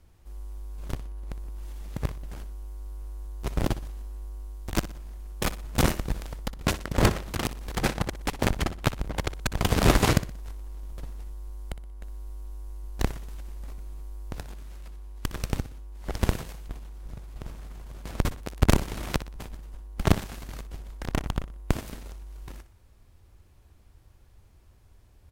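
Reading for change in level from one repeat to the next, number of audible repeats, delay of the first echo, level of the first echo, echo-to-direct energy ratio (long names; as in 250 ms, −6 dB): −8.5 dB, 3, 61 ms, −14.5 dB, −14.0 dB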